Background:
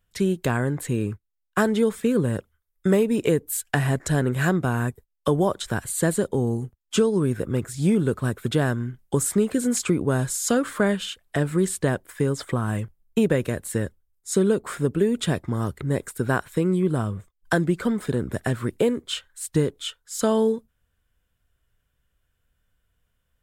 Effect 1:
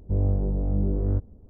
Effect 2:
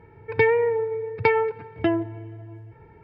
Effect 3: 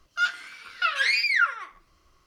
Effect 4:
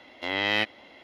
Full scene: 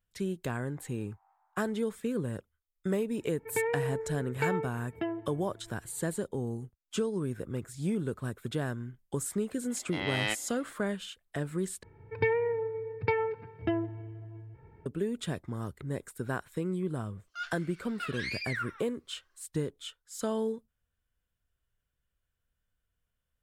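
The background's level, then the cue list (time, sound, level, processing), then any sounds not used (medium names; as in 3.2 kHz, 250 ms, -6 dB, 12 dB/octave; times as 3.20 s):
background -11 dB
0.59 s: add 1 -12.5 dB + steep high-pass 790 Hz 96 dB/octave
3.17 s: add 2 -11.5 dB + peaking EQ 95 Hz -9.5 dB 0.55 oct
9.70 s: add 4 -6.5 dB
11.83 s: replace with 2 -9.5 dB + bass shelf 200 Hz +7 dB
17.18 s: add 3 -14 dB + high-pass 320 Hz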